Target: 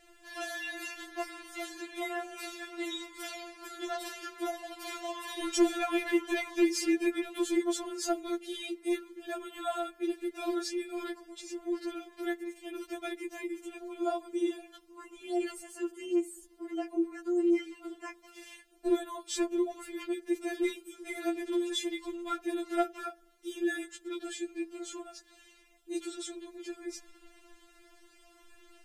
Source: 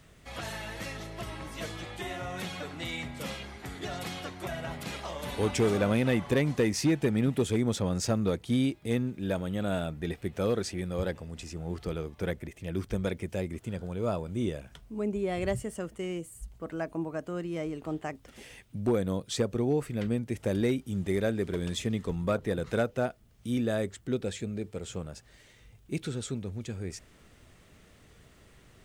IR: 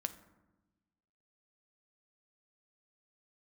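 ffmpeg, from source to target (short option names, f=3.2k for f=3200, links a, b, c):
-filter_complex "[0:a]aresample=32000,aresample=44100,asplit=2[a][b];[1:a]atrim=start_sample=2205[c];[b][c]afir=irnorm=-1:irlink=0,volume=-10dB[d];[a][d]amix=inputs=2:normalize=0,afftfilt=real='re*4*eq(mod(b,16),0)':imag='im*4*eq(mod(b,16),0)':win_size=2048:overlap=0.75"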